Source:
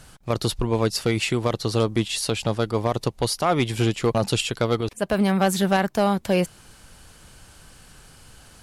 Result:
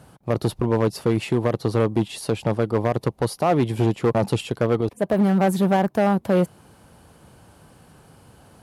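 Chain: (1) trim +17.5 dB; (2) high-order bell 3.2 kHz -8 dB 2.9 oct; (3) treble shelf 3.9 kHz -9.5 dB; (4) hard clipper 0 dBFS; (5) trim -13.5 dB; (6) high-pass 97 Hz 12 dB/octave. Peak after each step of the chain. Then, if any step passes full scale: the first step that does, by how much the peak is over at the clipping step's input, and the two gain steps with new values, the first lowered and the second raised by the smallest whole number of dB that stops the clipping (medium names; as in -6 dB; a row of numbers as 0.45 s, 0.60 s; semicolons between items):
+6.5 dBFS, +6.5 dBFS, +6.0 dBFS, 0.0 dBFS, -13.5 dBFS, -8.0 dBFS; step 1, 6.0 dB; step 1 +11.5 dB, step 5 -7.5 dB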